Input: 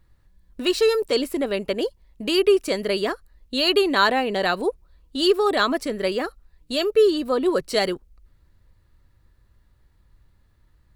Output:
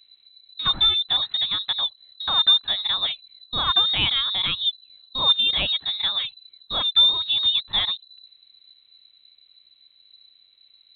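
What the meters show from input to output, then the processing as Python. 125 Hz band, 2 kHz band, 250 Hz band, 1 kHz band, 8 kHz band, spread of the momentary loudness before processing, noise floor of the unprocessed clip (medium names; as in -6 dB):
no reading, -5.5 dB, -19.5 dB, -5.5 dB, under -40 dB, 10 LU, -60 dBFS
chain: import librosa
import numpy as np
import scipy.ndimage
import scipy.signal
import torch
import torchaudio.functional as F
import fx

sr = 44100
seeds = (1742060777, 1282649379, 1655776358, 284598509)

y = fx.dynamic_eq(x, sr, hz=1500.0, q=1.3, threshold_db=-38.0, ratio=4.0, max_db=-8)
y = fx.freq_invert(y, sr, carrier_hz=4000)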